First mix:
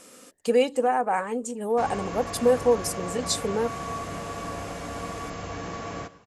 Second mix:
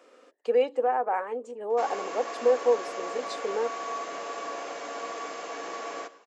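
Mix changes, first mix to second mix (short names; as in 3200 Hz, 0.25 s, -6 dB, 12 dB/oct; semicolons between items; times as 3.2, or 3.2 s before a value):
speech: add tape spacing loss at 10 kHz 30 dB; master: add HPF 350 Hz 24 dB/oct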